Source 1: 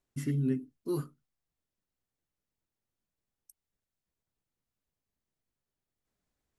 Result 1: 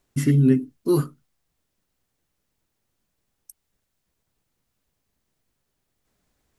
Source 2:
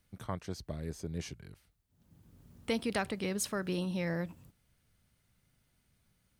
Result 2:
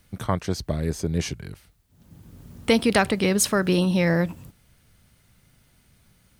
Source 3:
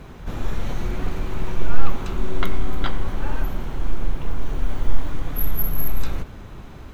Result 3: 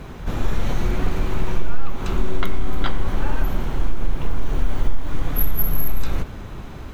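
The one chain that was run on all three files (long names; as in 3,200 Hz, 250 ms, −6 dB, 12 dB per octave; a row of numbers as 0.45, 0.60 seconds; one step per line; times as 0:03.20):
downward compressor 6 to 1, threshold −14 dBFS
normalise the peak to −6 dBFS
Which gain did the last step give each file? +13.0, +13.5, +4.5 decibels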